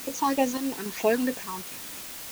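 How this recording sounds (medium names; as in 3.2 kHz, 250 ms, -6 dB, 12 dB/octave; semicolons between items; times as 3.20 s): phasing stages 6, 3.1 Hz, lowest notch 570–1400 Hz; random-step tremolo, depth 75%; a quantiser's noise floor 8-bit, dither triangular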